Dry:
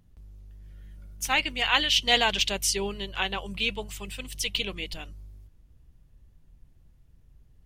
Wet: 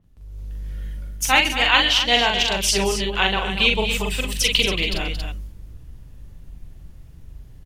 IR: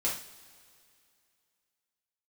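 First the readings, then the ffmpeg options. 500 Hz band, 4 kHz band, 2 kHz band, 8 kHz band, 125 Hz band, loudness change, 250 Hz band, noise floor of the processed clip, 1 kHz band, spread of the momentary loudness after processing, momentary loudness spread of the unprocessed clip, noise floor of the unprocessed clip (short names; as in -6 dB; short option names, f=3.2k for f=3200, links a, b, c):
+8.5 dB, +7.0 dB, +8.5 dB, +6.5 dB, +11.5 dB, +7.5 dB, +9.5 dB, -44 dBFS, +8.0 dB, 18 LU, 16 LU, -60 dBFS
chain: -af "aecho=1:1:42|132|226|276:0.631|0.112|0.266|0.316,dynaudnorm=f=140:g=5:m=13.5dB,adynamicequalizer=threshold=0.0251:dfrequency=4900:dqfactor=0.7:tfrequency=4900:tqfactor=0.7:attack=5:release=100:ratio=0.375:range=2.5:mode=cutabove:tftype=highshelf"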